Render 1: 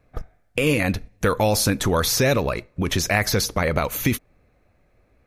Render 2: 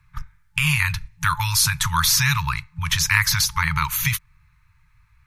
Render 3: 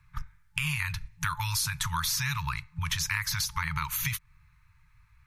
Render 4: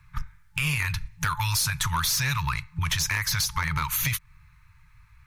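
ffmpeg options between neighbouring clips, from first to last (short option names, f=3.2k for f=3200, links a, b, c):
-filter_complex "[0:a]afftfilt=real='re*(1-between(b*sr/4096,170,870))':imag='im*(1-between(b*sr/4096,170,870))':win_size=4096:overlap=0.75,acrossover=split=160|5900[a][b][c];[a]alimiter=level_in=3.5dB:limit=-24dB:level=0:latency=1,volume=-3.5dB[d];[d][b][c]amix=inputs=3:normalize=0,volume=4.5dB"
-af "acompressor=threshold=-26dB:ratio=3,volume=-3dB"
-af "asoftclip=type=tanh:threshold=-23.5dB,volume=6dB"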